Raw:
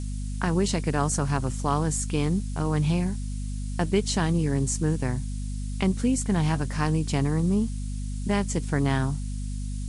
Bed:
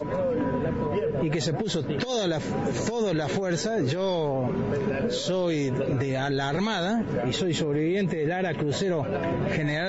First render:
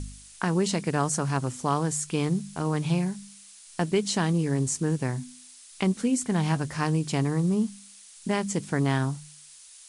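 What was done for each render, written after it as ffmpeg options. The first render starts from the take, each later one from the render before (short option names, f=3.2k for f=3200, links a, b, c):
-af "bandreject=f=50:t=h:w=4,bandreject=f=100:t=h:w=4,bandreject=f=150:t=h:w=4,bandreject=f=200:t=h:w=4,bandreject=f=250:t=h:w=4"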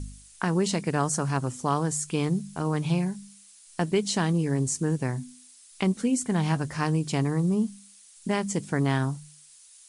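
-af "afftdn=nr=6:nf=-50"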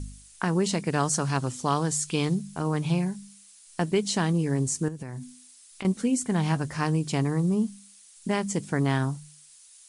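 -filter_complex "[0:a]asettb=1/sr,asplit=3[a][b][c];[a]atrim=end=0.924[d];[b]atrim=start=0.92:end=2.35,asetpts=PTS-STARTPTS,afade=t=in:d=0.004:c=qsin,afade=t=out:st=1.426:d=0.004:c=qsin,equalizer=f=3.9k:w=0.97:g=6.5[e];[c]atrim=start=2.346[f];[d][e]acrossfade=d=0.004:c1=hsin:c2=qsin[g];[g][f]acrossfade=d=0.004:c1=qsin:c2=hsin,asettb=1/sr,asplit=3[h][i][j];[h]atrim=end=4.884[k];[i]atrim=start=4.88:end=5.85,asetpts=PTS-STARTPTS,afade=t=in:d=0.004:c=qsin,afade=t=out:st=0.966:d=0.004:c=qsin,acompressor=threshold=-32dB:ratio=12:attack=3.2:release=140:knee=1:detection=peak[l];[j]atrim=start=5.846[m];[k][l]acrossfade=d=0.004:c1=hsin:c2=qsin[n];[n][m]acrossfade=d=0.004:c1=qsin:c2=hsin"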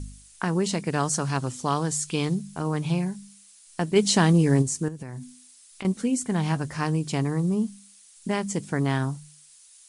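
-filter_complex "[0:a]asplit=3[a][b][c];[a]afade=t=out:st=3.95:d=0.02[d];[b]acontrast=62,afade=t=in:st=3.95:d=0.02,afade=t=out:st=4.61:d=0.02[e];[c]afade=t=in:st=4.61:d=0.02[f];[d][e][f]amix=inputs=3:normalize=0"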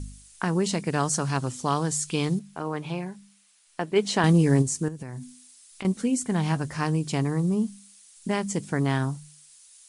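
-filter_complex "[0:a]asettb=1/sr,asplit=3[a][b][c];[a]atrim=end=2.394[d];[b]atrim=start=2.39:end=4.24,asetpts=PTS-STARTPTS,afade=t=in:d=0.004:c=qsin,afade=t=out:st=1.846:d=0.004:c=qsin,bass=f=250:g=-10,treble=f=4k:g=-10[e];[c]atrim=start=4.236[f];[d][e]acrossfade=d=0.004:c1=hsin:c2=qsin[g];[g][f]acrossfade=d=0.004:c1=qsin:c2=hsin"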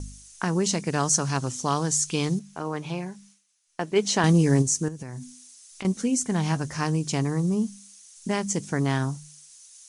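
-af "agate=range=-33dB:threshold=-52dB:ratio=3:detection=peak,equalizer=f=6.1k:t=o:w=0.46:g=9.5"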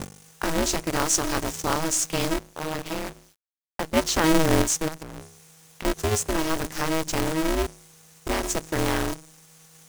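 -af "acrusher=bits=6:dc=4:mix=0:aa=0.000001,aeval=exprs='val(0)*sgn(sin(2*PI*160*n/s))':c=same"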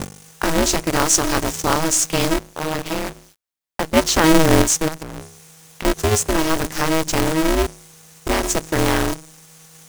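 -af "volume=6.5dB"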